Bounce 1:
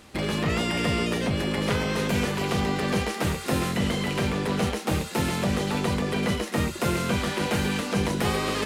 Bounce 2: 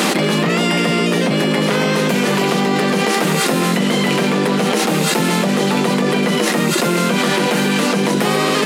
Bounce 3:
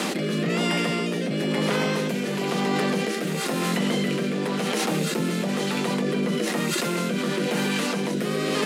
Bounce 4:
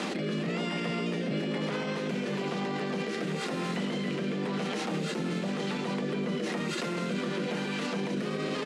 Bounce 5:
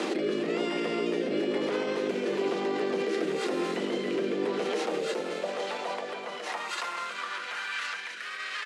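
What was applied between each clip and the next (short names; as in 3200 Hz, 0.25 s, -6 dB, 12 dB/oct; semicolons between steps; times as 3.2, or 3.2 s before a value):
elliptic high-pass 160 Hz; fast leveller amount 100%; gain +7 dB
rotary speaker horn 1 Hz; gain -7 dB
air absorption 77 m; limiter -21.5 dBFS, peak gain reduction 9 dB; echo 0.382 s -12 dB; gain -2.5 dB
high-pass sweep 350 Hz -> 1600 Hz, 4.42–8.04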